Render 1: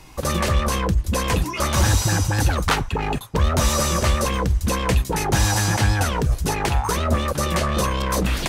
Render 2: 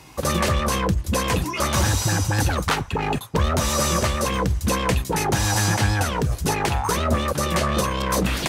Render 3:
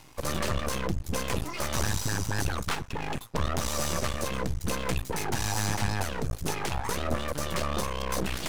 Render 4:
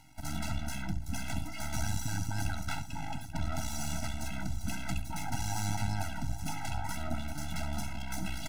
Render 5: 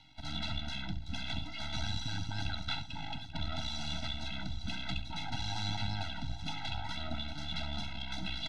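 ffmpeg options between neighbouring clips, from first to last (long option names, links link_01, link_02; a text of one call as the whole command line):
ffmpeg -i in.wav -af "highpass=73,alimiter=limit=-11dB:level=0:latency=1:release=337,volume=1dB" out.wav
ffmpeg -i in.wav -af "areverse,acompressor=mode=upward:threshold=-25dB:ratio=2.5,areverse,aeval=exprs='max(val(0),0)':channel_layout=same,volume=-4.5dB" out.wav
ffmpeg -i in.wav -af "aecho=1:1:68|837:0.266|0.237,afftfilt=real='re*eq(mod(floor(b*sr/1024/320),2),0)':imag='im*eq(mod(floor(b*sr/1024/320),2),0)':win_size=1024:overlap=0.75,volume=-4.5dB" out.wav
ffmpeg -i in.wav -filter_complex "[0:a]acrossover=split=400|1400|2500[link_01][link_02][link_03][link_04];[link_02]acrusher=bits=5:mode=log:mix=0:aa=0.000001[link_05];[link_01][link_05][link_03][link_04]amix=inputs=4:normalize=0,lowpass=frequency=3700:width_type=q:width=8.6,volume=-4dB" out.wav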